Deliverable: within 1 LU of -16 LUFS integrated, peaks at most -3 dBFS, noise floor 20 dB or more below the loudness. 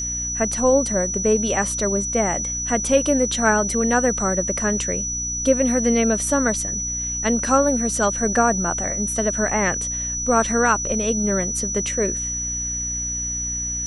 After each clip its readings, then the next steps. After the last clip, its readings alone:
hum 60 Hz; harmonics up to 300 Hz; hum level -31 dBFS; steady tone 5900 Hz; tone level -24 dBFS; loudness -20.0 LUFS; peak -4.5 dBFS; loudness target -16.0 LUFS
-> notches 60/120/180/240/300 Hz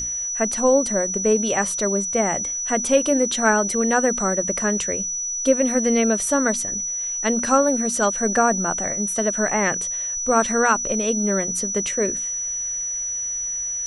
hum none; steady tone 5900 Hz; tone level -24 dBFS
-> notch 5900 Hz, Q 30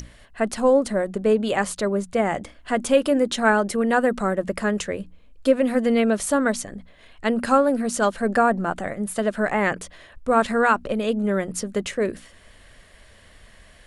steady tone none; loudness -22.5 LUFS; peak -5.0 dBFS; loudness target -16.0 LUFS
-> gain +6.5 dB; limiter -3 dBFS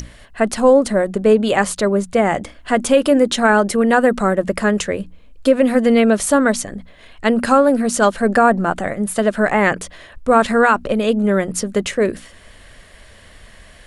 loudness -16.5 LUFS; peak -3.0 dBFS; noise floor -44 dBFS

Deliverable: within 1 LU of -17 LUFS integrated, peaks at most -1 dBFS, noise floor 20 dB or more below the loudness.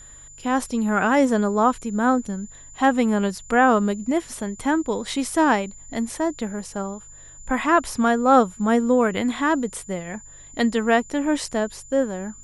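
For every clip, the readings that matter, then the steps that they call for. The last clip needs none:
hum 50 Hz; harmonics up to 150 Hz; hum level -51 dBFS; steady tone 7100 Hz; tone level -43 dBFS; loudness -22.0 LUFS; peak -5.0 dBFS; loudness target -17.0 LUFS
-> de-hum 50 Hz, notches 3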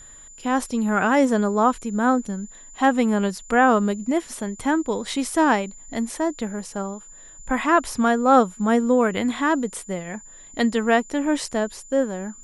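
hum none; steady tone 7100 Hz; tone level -43 dBFS
-> notch 7100 Hz, Q 30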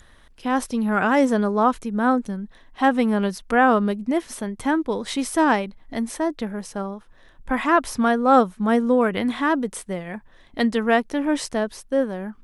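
steady tone none; loudness -22.0 LUFS; peak -5.0 dBFS; loudness target -17.0 LUFS
-> gain +5 dB; limiter -1 dBFS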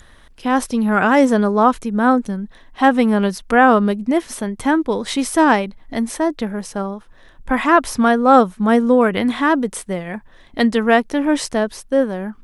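loudness -17.0 LUFS; peak -1.0 dBFS; noise floor -47 dBFS

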